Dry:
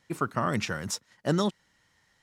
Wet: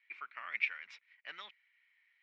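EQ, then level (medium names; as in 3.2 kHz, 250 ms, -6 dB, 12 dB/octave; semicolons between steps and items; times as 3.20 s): ladder band-pass 2.4 kHz, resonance 80%; distance through air 320 m; +7.0 dB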